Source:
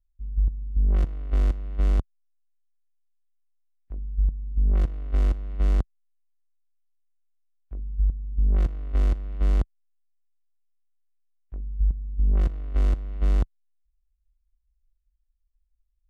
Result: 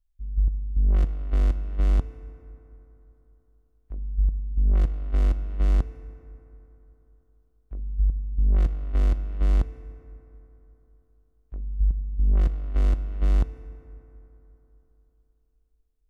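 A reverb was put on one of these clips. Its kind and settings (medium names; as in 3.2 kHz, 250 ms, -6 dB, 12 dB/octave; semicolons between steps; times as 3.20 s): FDN reverb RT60 3.6 s, high-frequency decay 0.4×, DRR 13.5 dB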